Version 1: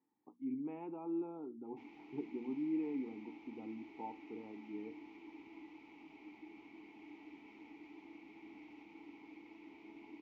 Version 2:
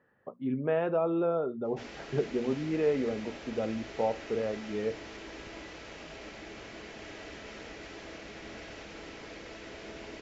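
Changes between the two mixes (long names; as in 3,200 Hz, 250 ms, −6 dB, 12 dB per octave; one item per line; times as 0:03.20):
speech: remove high-frequency loss of the air 300 metres
master: remove formant filter u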